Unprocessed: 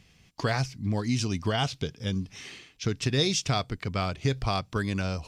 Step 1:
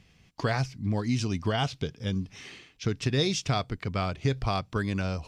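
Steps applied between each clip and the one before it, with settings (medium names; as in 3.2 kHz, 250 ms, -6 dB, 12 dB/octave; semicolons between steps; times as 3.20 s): treble shelf 4.1 kHz -6 dB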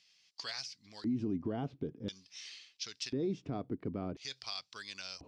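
LFO band-pass square 0.48 Hz 300–4800 Hz; peak limiter -31.5 dBFS, peak gain reduction 9 dB; trim +4.5 dB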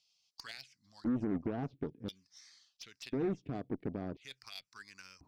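touch-sensitive phaser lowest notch 290 Hz, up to 4.9 kHz, full sweep at -30.5 dBFS; Chebyshev shaper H 2 -17 dB, 7 -23 dB, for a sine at -26.5 dBFS; trim +1 dB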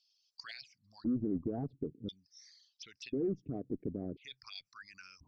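resonances exaggerated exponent 2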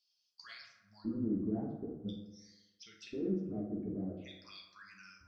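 reverberation RT60 1.1 s, pre-delay 5 ms, DRR -3 dB; trim -6.5 dB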